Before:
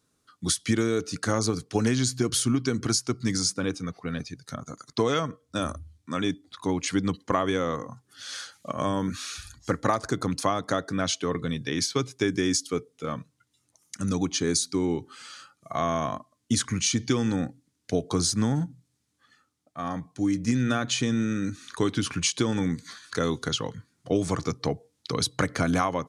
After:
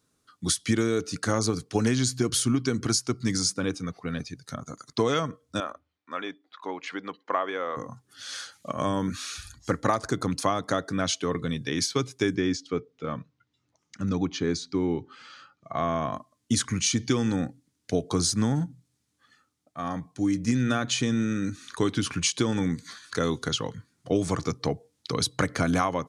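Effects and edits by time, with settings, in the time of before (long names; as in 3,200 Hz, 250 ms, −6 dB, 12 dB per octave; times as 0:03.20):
0:05.60–0:07.77: band-pass filter 540–2,500 Hz
0:12.35–0:16.13: high-frequency loss of the air 170 metres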